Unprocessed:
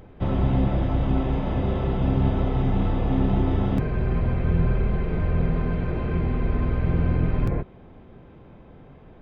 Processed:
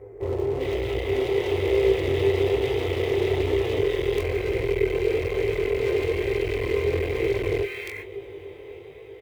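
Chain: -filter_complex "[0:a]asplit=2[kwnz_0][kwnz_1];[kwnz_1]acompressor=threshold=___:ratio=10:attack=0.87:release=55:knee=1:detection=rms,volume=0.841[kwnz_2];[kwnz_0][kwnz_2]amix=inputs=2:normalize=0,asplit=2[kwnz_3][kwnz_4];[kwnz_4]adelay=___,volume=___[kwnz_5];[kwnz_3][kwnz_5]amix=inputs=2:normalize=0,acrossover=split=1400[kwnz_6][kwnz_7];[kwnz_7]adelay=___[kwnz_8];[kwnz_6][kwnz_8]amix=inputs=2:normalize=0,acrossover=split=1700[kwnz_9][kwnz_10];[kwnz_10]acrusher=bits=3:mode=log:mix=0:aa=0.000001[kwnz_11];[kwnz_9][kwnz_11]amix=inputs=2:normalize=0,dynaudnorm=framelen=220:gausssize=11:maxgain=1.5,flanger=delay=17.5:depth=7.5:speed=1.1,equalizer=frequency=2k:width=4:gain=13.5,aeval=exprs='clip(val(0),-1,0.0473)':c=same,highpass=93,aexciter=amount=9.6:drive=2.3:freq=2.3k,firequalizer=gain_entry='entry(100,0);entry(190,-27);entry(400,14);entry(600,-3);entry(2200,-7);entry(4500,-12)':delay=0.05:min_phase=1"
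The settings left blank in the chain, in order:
0.0398, 20, 0.335, 400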